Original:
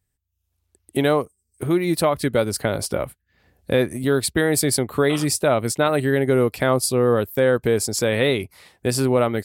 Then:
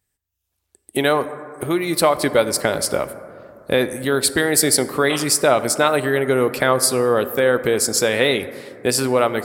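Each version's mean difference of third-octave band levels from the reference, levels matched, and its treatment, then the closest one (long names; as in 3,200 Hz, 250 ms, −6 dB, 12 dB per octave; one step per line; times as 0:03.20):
5.0 dB: harmonic and percussive parts rebalanced percussive +4 dB
low-shelf EQ 260 Hz −9.5 dB
dense smooth reverb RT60 2.8 s, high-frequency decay 0.25×, DRR 12 dB
level +2 dB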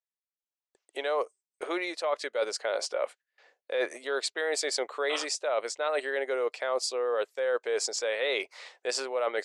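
11.0 dB: elliptic band-pass filter 500–6,900 Hz, stop band 50 dB
noise gate with hold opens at −53 dBFS
reversed playback
downward compressor, threshold −30 dBFS, peak gain reduction 14.5 dB
reversed playback
level +3 dB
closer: first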